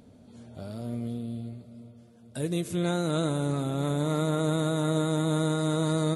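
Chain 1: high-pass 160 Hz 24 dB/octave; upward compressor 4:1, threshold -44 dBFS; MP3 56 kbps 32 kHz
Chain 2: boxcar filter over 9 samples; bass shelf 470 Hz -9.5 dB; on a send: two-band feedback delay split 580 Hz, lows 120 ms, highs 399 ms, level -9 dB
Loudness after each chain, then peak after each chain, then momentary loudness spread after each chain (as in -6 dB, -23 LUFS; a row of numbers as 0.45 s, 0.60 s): -30.0 LUFS, -34.5 LUFS; -15.5 dBFS, -21.0 dBFS; 18 LU, 15 LU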